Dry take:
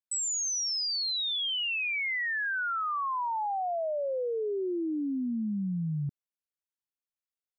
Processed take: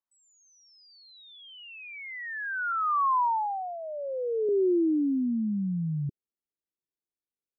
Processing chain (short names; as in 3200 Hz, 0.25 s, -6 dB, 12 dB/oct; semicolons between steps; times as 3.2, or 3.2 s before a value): low-pass sweep 1100 Hz -> 380 Hz, 3.13–3.79; 2.72–4.49 elliptic band-pass 280–1800 Hz